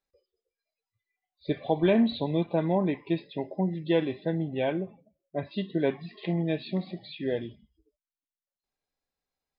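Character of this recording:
background noise floor −95 dBFS
spectral slope −6.5 dB per octave

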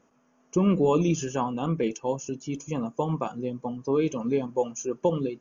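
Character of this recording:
background noise floor −66 dBFS
spectral slope −6.0 dB per octave

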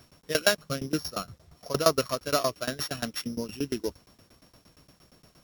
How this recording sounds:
a buzz of ramps at a fixed pitch in blocks of 8 samples
tremolo saw down 8.6 Hz, depth 95%
a quantiser's noise floor 12 bits, dither none
Ogg Vorbis

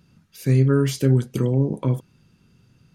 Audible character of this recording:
background noise floor −60 dBFS
spectral slope −9.5 dB per octave

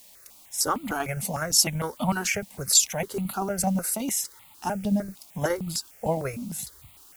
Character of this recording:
tremolo saw down 12 Hz, depth 45%
a quantiser's noise floor 10 bits, dither triangular
notches that jump at a steady rate 6.6 Hz 370–1,600 Hz

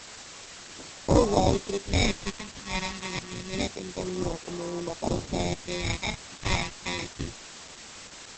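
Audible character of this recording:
aliases and images of a low sample rate 1,500 Hz, jitter 0%
phaser sweep stages 2, 0.27 Hz, lowest notch 470–2,500 Hz
a quantiser's noise floor 8 bits, dither triangular
Opus

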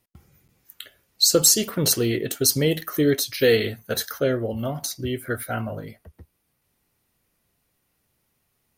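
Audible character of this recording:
background noise floor −73 dBFS
spectral slope −3.0 dB per octave

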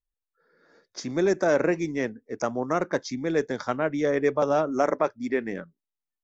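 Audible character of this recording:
background noise floor −88 dBFS
spectral slope −2.5 dB per octave

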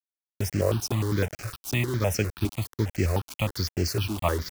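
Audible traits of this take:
a quantiser's noise floor 6 bits, dither none
notches that jump at a steady rate 9.8 Hz 500–3,600 Hz

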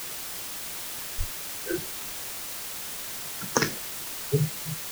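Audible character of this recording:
phaser sweep stages 2, 0.55 Hz, lowest notch 350–1,900 Hz
a quantiser's noise floor 8 bits, dither triangular

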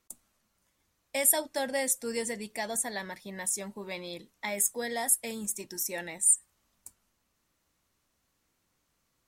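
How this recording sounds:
background noise floor −77 dBFS
spectral slope −1.5 dB per octave

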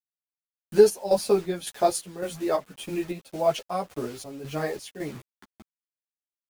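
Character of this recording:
a quantiser's noise floor 8 bits, dither none
chopped level 1.8 Hz, depth 60%, duty 60%
a shimmering, thickened sound

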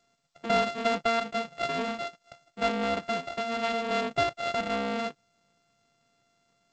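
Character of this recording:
a buzz of ramps at a fixed pitch in blocks of 64 samples
G.722

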